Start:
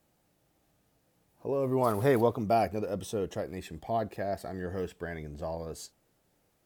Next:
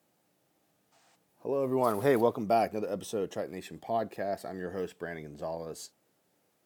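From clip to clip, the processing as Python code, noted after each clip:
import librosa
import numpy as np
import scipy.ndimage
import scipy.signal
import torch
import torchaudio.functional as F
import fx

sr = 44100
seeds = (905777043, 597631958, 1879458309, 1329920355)

y = fx.spec_box(x, sr, start_s=0.92, length_s=0.23, low_hz=660.0, high_hz=8900.0, gain_db=12)
y = scipy.signal.sosfilt(scipy.signal.butter(2, 170.0, 'highpass', fs=sr, output='sos'), y)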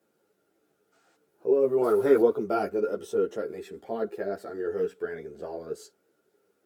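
y = fx.small_body(x, sr, hz=(410.0, 1400.0), ring_ms=30, db=16)
y = fx.ensemble(y, sr)
y = y * 10.0 ** (-1.5 / 20.0)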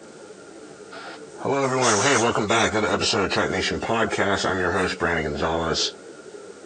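y = fx.freq_compress(x, sr, knee_hz=1900.0, ratio=1.5)
y = fx.spectral_comp(y, sr, ratio=4.0)
y = y * 10.0 ** (3.5 / 20.0)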